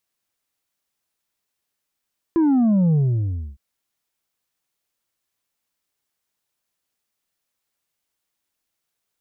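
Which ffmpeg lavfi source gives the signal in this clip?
-f lavfi -i "aevalsrc='0.188*clip((1.21-t)/0.64,0,1)*tanh(1.58*sin(2*PI*340*1.21/log(65/340)*(exp(log(65/340)*t/1.21)-1)))/tanh(1.58)':d=1.21:s=44100"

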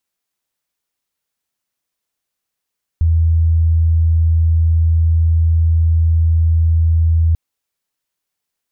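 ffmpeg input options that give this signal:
-f lavfi -i "aevalsrc='0.335*sin(2*PI*81.8*t)':d=4.34:s=44100"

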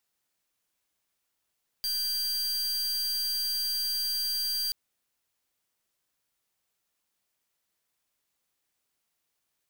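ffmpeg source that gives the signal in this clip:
-f lavfi -i "aevalsrc='0.0316*(2*lt(mod(4730*t,1),0.43)-1)':d=2.88:s=44100"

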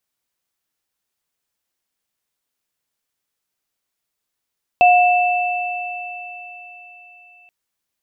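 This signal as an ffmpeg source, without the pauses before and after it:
-f lavfi -i "aevalsrc='0.422*pow(10,-3*t/3.31)*sin(2*PI*719*t)+0.178*pow(10,-3*t/4.95)*sin(2*PI*2650*t)':d=2.68:s=44100"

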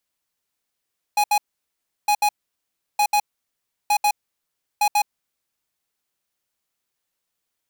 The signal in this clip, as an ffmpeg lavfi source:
-f lavfi -i "aevalsrc='0.133*(2*lt(mod(831*t,1),0.5)-1)*clip(min(mod(mod(t,0.91),0.14),0.07-mod(mod(t,0.91),0.14))/0.005,0,1)*lt(mod(t,0.91),0.28)':d=4.55:s=44100"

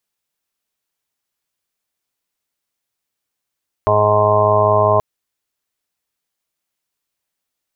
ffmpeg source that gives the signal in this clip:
-f lavfi -i "aevalsrc='0.106*sin(2*PI*105*t)+0.0282*sin(2*PI*210*t)+0.0158*sin(2*PI*315*t)+0.106*sin(2*PI*420*t)+0.0335*sin(2*PI*525*t)+0.2*sin(2*PI*630*t)+0.0562*sin(2*PI*735*t)+0.0668*sin(2*PI*840*t)+0.075*sin(2*PI*945*t)+0.15*sin(2*PI*1050*t)':d=1.13:s=44100"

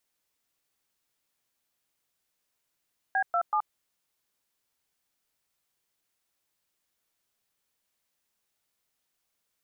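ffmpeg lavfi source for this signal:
-f lavfi -i "aevalsrc='0.0531*clip(min(mod(t,0.189),0.076-mod(t,0.189))/0.002,0,1)*(eq(floor(t/0.189),0)*(sin(2*PI*770*mod(t,0.189))+sin(2*PI*1633*mod(t,0.189)))+eq(floor(t/0.189),1)*(sin(2*PI*697*mod(t,0.189))+sin(2*PI*1336*mod(t,0.189)))+eq(floor(t/0.189),2)*(sin(2*PI*852*mod(t,0.189))+sin(2*PI*1209*mod(t,0.189))))':d=0.567:s=44100"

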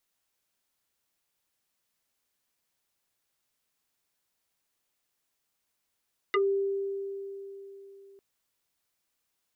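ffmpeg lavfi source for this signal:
-f lavfi -i "aevalsrc='0.0891*pow(10,-3*t/3.62)*sin(2*PI*394*t+3.5*pow(10,-3*t/0.12)*sin(2*PI*2.07*394*t))':d=1.85:s=44100"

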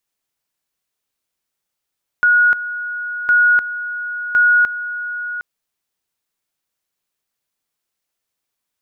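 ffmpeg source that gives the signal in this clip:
-f lavfi -i "aevalsrc='pow(10,(-9-13*gte(mod(t,1.06),0.3))/20)*sin(2*PI*1450*t)':d=3.18:s=44100"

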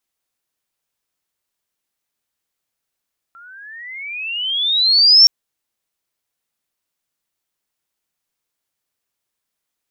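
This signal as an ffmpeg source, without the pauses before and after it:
-f lavfi -i "aevalsrc='pow(10,(-4+35*(t/1.92-1))/20)*sin(2*PI*1350*1.92/(24.5*log(2)/12)*(exp(24.5*log(2)/12*t/1.92)-1))':d=1.92:s=44100"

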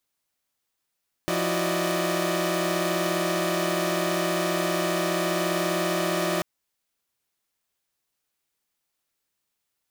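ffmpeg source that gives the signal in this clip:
-f lavfi -i "aevalsrc='0.0422*((2*mod(174.61*t,1)-1)+(2*mod(329.63*t,1)-1)+(2*mod(369.99*t,1)-1)+(2*mod(587.33*t,1)-1)+(2*mod(622.25*t,1)-1))':d=5.14:s=44100"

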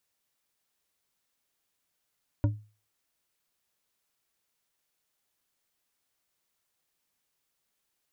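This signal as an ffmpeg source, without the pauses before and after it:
-f lavfi -i "aevalsrc='0.119*pow(10,-3*t/0.35)*sin(2*PI*106*t)+0.0562*pow(10,-3*t/0.172)*sin(2*PI*292.2*t)+0.0266*pow(10,-3*t/0.107)*sin(2*PI*572.8*t)+0.0126*pow(10,-3*t/0.076)*sin(2*PI*946.9*t)+0.00596*pow(10,-3*t/0.057)*sin(2*PI*1414*t)':d=0.89:s=44100"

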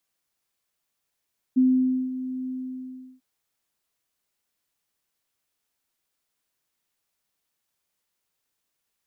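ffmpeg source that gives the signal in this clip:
-f lavfi -i "aevalsrc='0.188*sin(2*PI*257*t)':d=1.645:s=44100,afade=t=in:d=0.018,afade=t=out:st=0.018:d=0.521:silence=0.211,afade=t=out:st=0.93:d=0.715"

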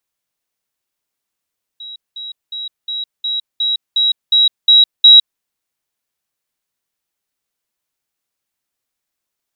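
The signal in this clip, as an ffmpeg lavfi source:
-f lavfi -i "aevalsrc='pow(10,(-28.5+3*floor(t/0.36))/20)*sin(2*PI*3860*t)*clip(min(mod(t,0.36),0.16-mod(t,0.36))/0.005,0,1)':d=3.6:s=44100"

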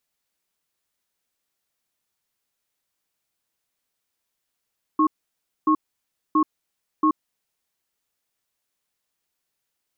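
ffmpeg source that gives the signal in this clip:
-f lavfi -i "aevalsrc='0.133*(sin(2*PI*310*t)+sin(2*PI*1090*t))*clip(min(mod(t,0.68),0.08-mod(t,0.68))/0.005,0,1)':d=2.46:s=44100"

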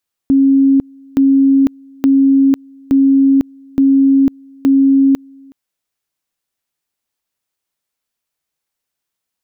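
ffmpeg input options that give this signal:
-f lavfi -i "aevalsrc='pow(10,(-6.5-30*gte(mod(t,0.87),0.5))/20)*sin(2*PI*272*t)':d=5.22:s=44100"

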